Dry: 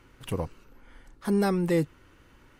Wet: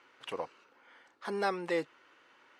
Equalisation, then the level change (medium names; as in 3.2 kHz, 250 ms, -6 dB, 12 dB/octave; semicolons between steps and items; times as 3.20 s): band-pass 580–4800 Hz; 0.0 dB